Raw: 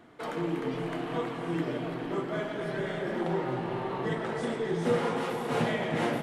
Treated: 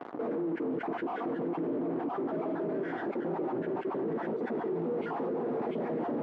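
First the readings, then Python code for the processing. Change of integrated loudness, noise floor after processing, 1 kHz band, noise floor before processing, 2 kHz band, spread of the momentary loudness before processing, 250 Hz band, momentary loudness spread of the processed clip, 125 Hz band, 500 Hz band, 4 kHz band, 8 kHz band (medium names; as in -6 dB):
-2.0 dB, -39 dBFS, -2.5 dB, -37 dBFS, -8.0 dB, 5 LU, -0.5 dB, 1 LU, -9.0 dB, -1.5 dB, under -15 dB, under -25 dB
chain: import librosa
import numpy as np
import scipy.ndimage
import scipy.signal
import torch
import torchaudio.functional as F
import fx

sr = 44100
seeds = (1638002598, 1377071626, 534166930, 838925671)

p1 = fx.spec_dropout(x, sr, seeds[0], share_pct=29)
p2 = fx.fuzz(p1, sr, gain_db=51.0, gate_db=-55.0)
p3 = p1 + F.gain(torch.from_numpy(p2), -6.5).numpy()
p4 = fx.ladder_bandpass(p3, sr, hz=360.0, resonance_pct=30)
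p5 = p4 + 10.0 ** (-11.0 / 20.0) * np.pad(p4, (int(982 * sr / 1000.0), 0))[:len(p4)]
p6 = fx.env_flatten(p5, sr, amount_pct=70)
y = F.gain(torch.from_numpy(p6), -4.0).numpy()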